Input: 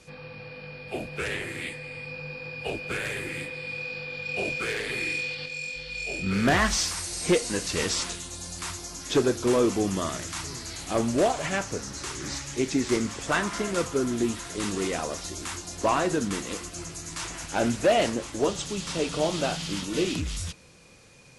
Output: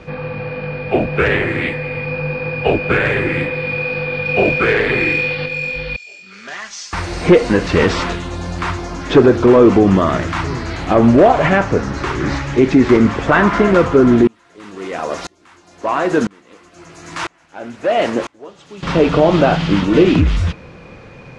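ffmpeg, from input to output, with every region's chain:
-filter_complex "[0:a]asettb=1/sr,asplit=3[a][b][c];[a]atrim=end=5.964[d];[b]atrim=start=5.96:end=6.93,asetpts=PTS-STARTPTS,afade=t=in:d=0.004:c=qsin,afade=t=out:st=0.966:d=0.004:c=qsin,bandpass=f=6.5k:t=q:w=2.9,aecho=1:1:5:0.45,atrim=end_sample=42777[e];[c]atrim=start=6.926[f];[d][e]acrossfade=d=0.004:c1=hsin:c2=qsin[g];[g][f]acrossfade=d=0.004:c1=qsin:c2=hsin,asettb=1/sr,asplit=3[h][i][j];[h]atrim=end=14.274[k];[i]atrim=start=14.27:end=18.83,asetpts=PTS-STARTPTS,afade=t=in:d=0.004:c=qsin,afade=t=out:st=4.556:d=0.004:c=qsin,highpass=f=320:p=1,aemphasis=mode=production:type=50fm,aeval=exprs='val(0)*pow(10,-32*if(lt(mod(-1*n/s,1),2*abs(-1)/1000),1-mod(-1*n/s,1)/(2*abs(-1)/1000),(mod(-1*n/s,1)-2*abs(-1)/1000)/(1-2*abs(-1)/1000))/20)':c=same[l];[j]atrim=start=18.826[m];[k][l]acrossfade=d=0.004:c1=hsin:c2=qsin[n];[n][m]acrossfade=d=0.004:c1=qsin:c2=hsin,lowpass=1.9k,acontrast=31,alimiter=level_in=14dB:limit=-1dB:release=50:level=0:latency=1,volume=-1dB"

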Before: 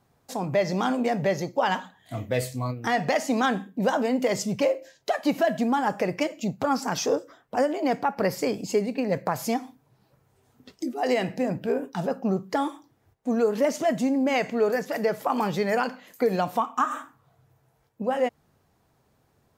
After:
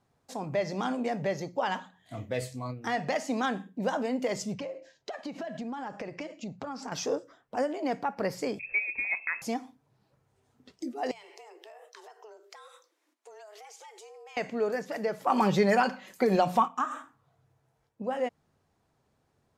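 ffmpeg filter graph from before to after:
-filter_complex "[0:a]asettb=1/sr,asplit=3[a][b][c];[a]atrim=end=4.544[d];[b]atrim=start=4.54:end=6.92,asetpts=PTS-STARTPTS,afade=t=in:d=0.004:c=qsin,afade=t=out:st=2.376:d=0.004:c=qsin,lowpass=6.7k,acompressor=threshold=-27dB:ratio=10:attack=3.2:release=140:knee=1:detection=peak[e];[c]atrim=start=6.916[f];[d][e]acrossfade=d=0.004:c1=hsin:c2=qsin[g];[g][f]acrossfade=d=0.004:c1=qsin:c2=hsin,asettb=1/sr,asplit=3[h][i][j];[h]atrim=end=8.594[k];[i]atrim=start=8.59:end=9.42,asetpts=PTS-STARTPTS,afade=t=in:d=0.004:c=qsin,afade=t=out:st=0.826:d=0.004:c=qsin,aeval=exprs='val(0)+0.00794*(sin(2*PI*60*n/s)+sin(2*PI*2*60*n/s)/2+sin(2*PI*3*60*n/s)/3+sin(2*PI*4*60*n/s)/4+sin(2*PI*5*60*n/s)/5)':c=same,lowpass=f=2.3k:t=q:w=0.5098,lowpass=f=2.3k:t=q:w=0.6013,lowpass=f=2.3k:t=q:w=0.9,lowpass=f=2.3k:t=q:w=2.563,afreqshift=-2700[l];[j]atrim=start=9.416[m];[k][l]acrossfade=d=0.004:c1=hsin:c2=qsin[n];[n][m]acrossfade=d=0.004:c1=qsin:c2=hsin,asettb=1/sr,asplit=3[o][p][q];[o]atrim=end=11.114[r];[p]atrim=start=11.11:end=14.37,asetpts=PTS-STARTPTS,afade=t=in:d=0.004:c=qsin,afade=t=out:st=3.256:d=0.004:c=qsin,tiltshelf=f=1.2k:g=-8,acompressor=threshold=-40dB:ratio=12:attack=3.2:release=140:knee=1:detection=peak,afreqshift=210[s];[q]atrim=start=14.366[t];[r][s]acrossfade=d=0.004:c1=hsin:c2=qsin[u];[u][t]acrossfade=d=0.004:c1=qsin:c2=hsin,asettb=1/sr,asplit=3[v][w][x];[v]atrim=end=15.274[y];[w]atrim=start=15.27:end=16.68,asetpts=PTS-STARTPTS,afade=t=in:d=0.004:c=qsin,afade=t=out:st=1.406:d=0.004:c=qsin,aecho=1:1:5.3:0.52,atrim=end_sample=62181,acontrast=57[z];[x]atrim=start=16.676[aa];[y][z]acrossfade=d=0.004:c1=hsin:c2=qsin[ab];[ab][aa]acrossfade=d=0.004:c1=qsin:c2=hsin,lowpass=10k,bandreject=f=60:t=h:w=6,bandreject=f=120:t=h:w=6,bandreject=f=180:t=h:w=6,volume=-6dB"

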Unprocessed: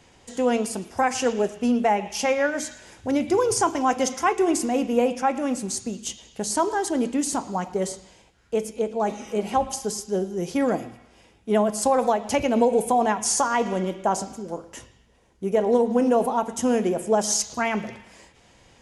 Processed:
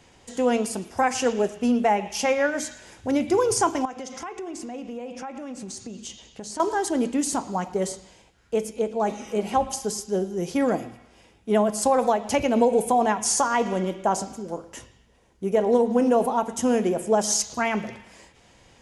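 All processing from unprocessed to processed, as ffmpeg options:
-filter_complex "[0:a]asettb=1/sr,asplit=3[a][b][c];[a]atrim=end=3.854[d];[b]atrim=start=3.85:end=6.6,asetpts=PTS-STARTPTS,afade=t=in:d=0.004:c=qsin,afade=t=out:st=2.746:d=0.004:c=qsin,lowpass=7.3k,acompressor=threshold=-33dB:ratio=5:attack=3.2:release=140:knee=1:detection=peak[e];[c]atrim=start=6.596[f];[d][e]acrossfade=d=0.004:c1=hsin:c2=qsin[g];[g][f]acrossfade=d=0.004:c1=qsin:c2=hsin"

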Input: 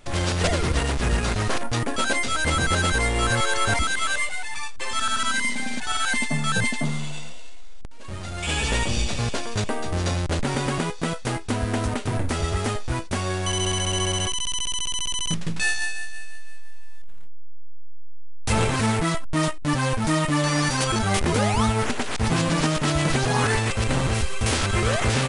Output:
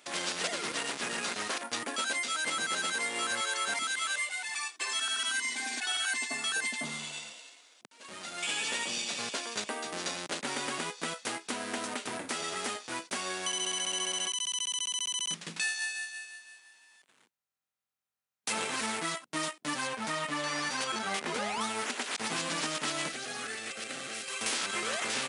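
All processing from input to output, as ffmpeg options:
-filter_complex "[0:a]asettb=1/sr,asplit=3[a][b][c];[a]atrim=end=4.494[d];[b]atrim=start=4.49:end=6.66,asetpts=PTS-STARTPTS,afade=t=in:d=0.004:c=qsin,afade=t=out:st=2.166:d=0.004:c=qsin,highpass=210,aecho=1:1:2.7:0.75,atrim=end_sample=95697[e];[c]atrim=start=6.656[f];[d][e]acrossfade=d=0.004:c1=hsin:c2=qsin[g];[g][f]acrossfade=d=0.004:c1=qsin:c2=hsin,asettb=1/sr,asplit=3[h][i][j];[h]atrim=end=19.874[k];[i]atrim=start=19.87:end=21.61,asetpts=PTS-STARTPTS,afade=t=in:d=0.004:c=qsin,afade=t=out:st=1.736:d=0.004:c=qsin,highpass=63,aemphasis=mode=reproduction:type=cd,bandreject=f=320:w=8.3[l];[j]atrim=start=21.606[m];[k][l]acrossfade=d=0.004:c1=hsin:c2=qsin[n];[n][m]acrossfade=d=0.004:c1=qsin:c2=hsin,asettb=1/sr,asplit=3[o][p][q];[o]atrim=end=23.084[r];[p]atrim=start=23.08:end=24.28,asetpts=PTS-STARTPTS,afade=t=in:d=0.004:c=qsin,afade=t=out:st=1.196:d=0.004:c=qsin,acrossover=split=240|1000[s][t][u];[s]acompressor=threshold=-34dB:ratio=4[v];[t]acompressor=threshold=-37dB:ratio=4[w];[u]acompressor=threshold=-36dB:ratio=4[x];[v][w][x]amix=inputs=3:normalize=0,asuperstop=centerf=960:order=4:qfactor=3.4[y];[q]atrim=start=24.276[z];[r][y]acrossfade=d=0.004:c1=hsin:c2=qsin[aa];[aa][z]acrossfade=d=0.004:c1=qsin:c2=hsin,highpass=f=200:w=0.5412,highpass=f=200:w=1.3066,tiltshelf=f=970:g=-5.5,acompressor=threshold=-25dB:ratio=2.5,volume=-6dB"

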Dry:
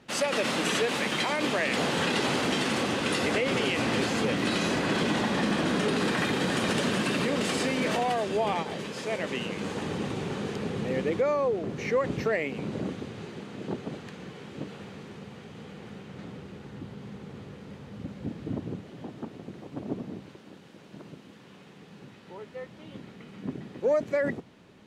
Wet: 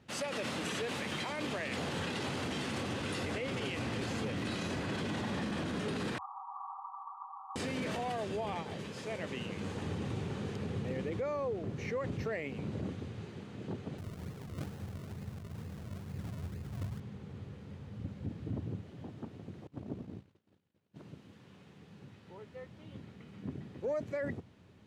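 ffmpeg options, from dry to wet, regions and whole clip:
-filter_complex "[0:a]asettb=1/sr,asplit=3[a][b][c];[a]atrim=end=6.184[d];[b]atrim=start=6.18:end=7.56,asetpts=PTS-STARTPTS,afade=t=in:d=0.004:c=qsin,afade=t=out:st=1.376:d=0.004:c=qsin,asuperpass=centerf=990:order=20:qfactor=2,aecho=1:1:5.2:0.95,atrim=end_sample=60858[e];[c]atrim=start=7.556[f];[d][e]acrossfade=d=0.004:c1=hsin:c2=qsin[g];[g][f]acrossfade=d=0.004:c1=qsin:c2=hsin,asettb=1/sr,asplit=3[h][i][j];[h]atrim=end=13.984[k];[i]atrim=start=13.98:end=17,asetpts=PTS-STARTPTS,afade=t=in:d=0.004:c=qsin,afade=t=out:st=3.016:d=0.004:c=qsin,lowshelf=f=110:g=12,acrusher=samples=37:mix=1:aa=0.000001:lfo=1:lforange=37:lforate=2.2[l];[j]atrim=start=16.996[m];[k][l]acrossfade=d=0.004:c1=hsin:c2=qsin[n];[n][m]acrossfade=d=0.004:c1=qsin:c2=hsin,asettb=1/sr,asplit=3[o][p][q];[o]atrim=end=19.674[r];[p]atrim=start=19.67:end=20.96,asetpts=PTS-STARTPTS,afade=t=in:d=0.004:c=qsin,afade=t=out:st=1.286:d=0.004:c=qsin,agate=range=-33dB:threshold=-39dB:ratio=3:release=100:detection=peak,tremolo=f=56:d=0.462[s];[q]atrim=start=20.956[t];[r][s]acrossfade=d=0.004:c1=hsin:c2=qsin[u];[u][t]acrossfade=d=0.004:c1=qsin:c2=hsin,equalizer=f=89:w=1.2:g=13.5,alimiter=limit=-20dB:level=0:latency=1:release=25,volume=-8.5dB"

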